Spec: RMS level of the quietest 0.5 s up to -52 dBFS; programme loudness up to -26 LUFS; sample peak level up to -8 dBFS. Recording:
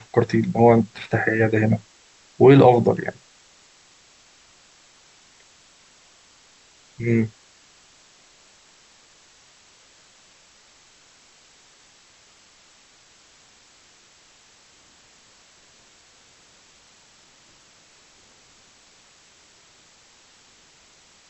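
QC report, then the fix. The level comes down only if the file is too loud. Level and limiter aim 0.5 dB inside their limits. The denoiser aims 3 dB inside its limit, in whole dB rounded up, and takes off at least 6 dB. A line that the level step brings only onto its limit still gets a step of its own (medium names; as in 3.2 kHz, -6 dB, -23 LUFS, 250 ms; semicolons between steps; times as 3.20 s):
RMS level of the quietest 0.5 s -54 dBFS: pass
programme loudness -18.5 LUFS: fail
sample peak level -2.0 dBFS: fail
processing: trim -8 dB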